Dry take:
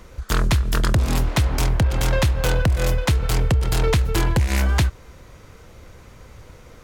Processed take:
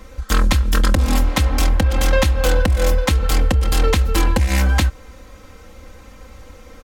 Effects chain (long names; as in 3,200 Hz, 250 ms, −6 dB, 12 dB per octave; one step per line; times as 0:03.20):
comb filter 3.8 ms, depth 84%
level +1 dB